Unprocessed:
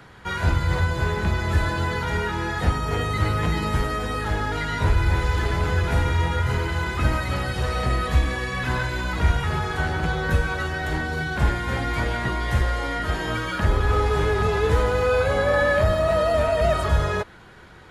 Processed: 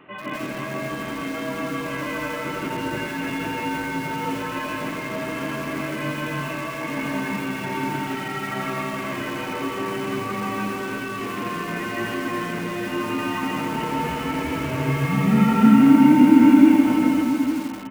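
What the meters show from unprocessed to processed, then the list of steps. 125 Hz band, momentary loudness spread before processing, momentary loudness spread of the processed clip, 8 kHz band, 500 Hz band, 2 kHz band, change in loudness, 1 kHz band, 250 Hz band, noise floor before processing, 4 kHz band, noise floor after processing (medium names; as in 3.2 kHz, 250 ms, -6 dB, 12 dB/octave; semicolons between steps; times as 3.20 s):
-7.5 dB, 6 LU, 15 LU, +0.5 dB, -5.5 dB, -2.5 dB, +1.0 dB, -0.5 dB, +13.0 dB, -45 dBFS, -2.5 dB, -31 dBFS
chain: distance through air 460 m; multi-tap echo 308/860 ms -6.5/-9.5 dB; in parallel at -3 dB: hard clipper -16.5 dBFS, distortion -15 dB; on the sum: mistuned SSB -360 Hz 530–3100 Hz; high-pass 230 Hz 12 dB/octave; high-order bell 840 Hz -14 dB 2.4 oct; reverse echo 164 ms -3 dB; bit-crushed delay 83 ms, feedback 35%, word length 7-bit, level -4.5 dB; trim +7.5 dB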